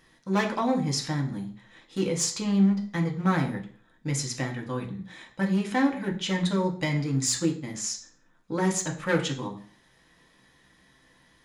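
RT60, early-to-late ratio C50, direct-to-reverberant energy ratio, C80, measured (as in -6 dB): 0.50 s, 10.5 dB, 1.0 dB, 14.5 dB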